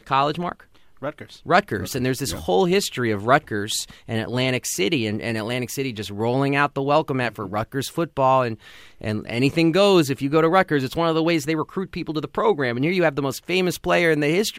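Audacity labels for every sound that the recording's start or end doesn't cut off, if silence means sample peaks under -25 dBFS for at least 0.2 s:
1.040000	1.220000	sound
1.480000	3.830000	sound
4.090000	8.530000	sound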